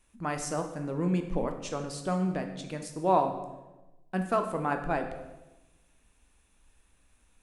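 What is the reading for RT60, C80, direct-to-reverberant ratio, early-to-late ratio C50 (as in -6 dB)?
1.1 s, 10.0 dB, 5.0 dB, 8.0 dB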